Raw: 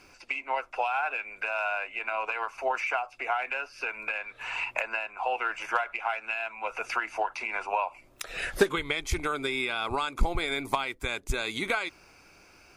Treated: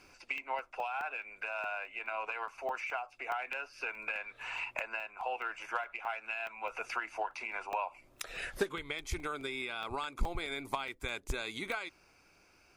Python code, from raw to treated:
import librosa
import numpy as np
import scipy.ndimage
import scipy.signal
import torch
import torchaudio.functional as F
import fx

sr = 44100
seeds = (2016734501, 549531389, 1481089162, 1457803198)

y = fx.rider(x, sr, range_db=4, speed_s=0.5)
y = fx.buffer_crackle(y, sr, first_s=0.38, period_s=0.21, block=64, kind='zero')
y = y * librosa.db_to_amplitude(-7.5)